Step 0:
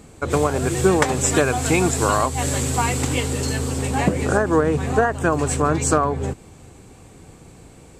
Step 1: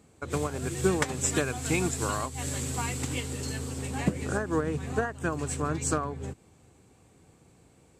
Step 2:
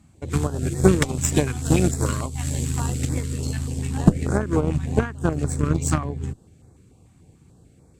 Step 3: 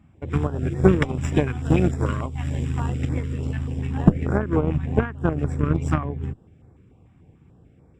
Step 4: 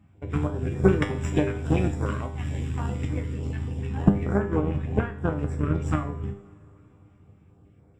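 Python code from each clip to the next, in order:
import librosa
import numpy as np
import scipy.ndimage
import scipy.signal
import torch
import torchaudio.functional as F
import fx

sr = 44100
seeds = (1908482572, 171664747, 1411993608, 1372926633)

y1 = scipy.signal.sosfilt(scipy.signal.butter(2, 61.0, 'highpass', fs=sr, output='sos'), x)
y1 = fx.dynamic_eq(y1, sr, hz=700.0, q=0.71, threshold_db=-31.0, ratio=4.0, max_db=-6)
y1 = fx.upward_expand(y1, sr, threshold_db=-32.0, expansion=1.5)
y1 = y1 * librosa.db_to_amplitude(-5.0)
y2 = fx.low_shelf(y1, sr, hz=280.0, db=10.0)
y2 = fx.cheby_harmonics(y2, sr, harmonics=(4, 7), levels_db=(-17, -24), full_scale_db=-6.5)
y2 = fx.filter_held_notch(y2, sr, hz=6.8, low_hz=450.0, high_hz=2900.0)
y2 = y2 * librosa.db_to_amplitude(5.0)
y3 = scipy.signal.savgol_filter(y2, 25, 4, mode='constant')
y4 = fx.comb_fb(y3, sr, f0_hz=100.0, decay_s=0.49, harmonics='all', damping=0.0, mix_pct=80)
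y4 = fx.rev_double_slope(y4, sr, seeds[0], early_s=0.43, late_s=4.0, knee_db=-18, drr_db=12.0)
y4 = y4 * librosa.db_to_amplitude(6.0)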